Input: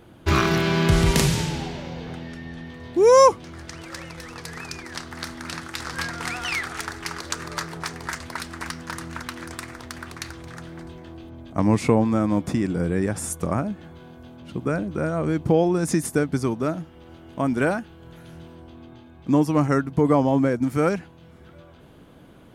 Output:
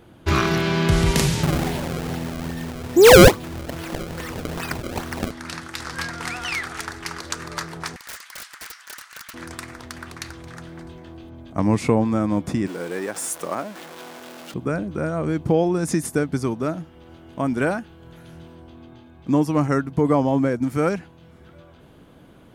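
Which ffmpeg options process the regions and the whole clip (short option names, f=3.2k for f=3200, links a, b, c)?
-filter_complex "[0:a]asettb=1/sr,asplit=3[a][b][c];[a]atrim=end=1.434[d];[b]atrim=start=1.43:end=5.31,asetpts=PTS-STARTPTS,afade=t=in:d=0.004:c=qsin,afade=t=out:st=3.876:d=0.004:c=qsin,acrusher=samples=28:mix=1:aa=0.000001:lfo=1:lforange=44.8:lforate=2.4,acontrast=79[e];[c]atrim=start=5.306[f];[d][e]acrossfade=d=0.004:c1=hsin:c2=qsin[g];[g][f]acrossfade=d=0.004:c1=qsin:c2=hsin,asettb=1/sr,asplit=3[h][i][j];[h]atrim=end=7.964[k];[i]atrim=start=7.96:end=9.34,asetpts=PTS-STARTPTS,afade=t=in:d=0.004:c=qsin,afade=t=out:st=1.376:d=0.004:c=qsin,highpass=f=1.2k:w=0.5412,highpass=f=1.2k:w=1.3066,highshelf=f=8k:g=3,aeval=exprs='(mod(28.2*val(0)+1,2)-1)/28.2':c=same[l];[j]atrim=start=9.336[m];[k][l]acrossfade=d=0.004:c1=hsin:c2=qsin[n];[n][m]acrossfade=d=0.004:c1=qsin:c2=hsin,asettb=1/sr,asplit=3[o][p][q];[o]atrim=end=12.674[r];[p]atrim=start=12.67:end=14.54,asetpts=PTS-STARTPTS,afade=t=in:d=0.004:c=qsin,afade=t=out:st=1.866:d=0.004:c=qsin,aeval=exprs='val(0)+0.5*0.0266*sgn(val(0))':c=same,highpass=410[s];[q]atrim=start=14.536[t];[r][s]acrossfade=d=0.004:c1=hsin:c2=qsin[u];[u][t]acrossfade=d=0.004:c1=qsin:c2=hsin"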